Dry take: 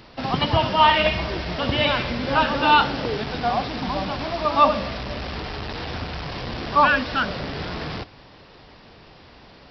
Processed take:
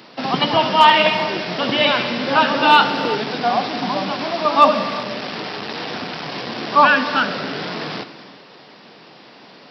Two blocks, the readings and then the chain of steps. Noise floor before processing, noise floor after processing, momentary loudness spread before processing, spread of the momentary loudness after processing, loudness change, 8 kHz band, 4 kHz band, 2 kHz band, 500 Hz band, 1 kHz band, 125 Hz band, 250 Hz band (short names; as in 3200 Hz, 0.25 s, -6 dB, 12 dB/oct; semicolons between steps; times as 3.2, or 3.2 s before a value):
-48 dBFS, -45 dBFS, 14 LU, 15 LU, +4.5 dB, n/a, +5.5 dB, +5.0 dB, +4.5 dB, +4.5 dB, -4.0 dB, +4.0 dB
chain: HPF 170 Hz 24 dB/oct; high shelf 3800 Hz +2.5 dB; hard clip -6 dBFS, distortion -35 dB; non-linear reverb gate 0.41 s flat, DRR 11.5 dB; gain +4 dB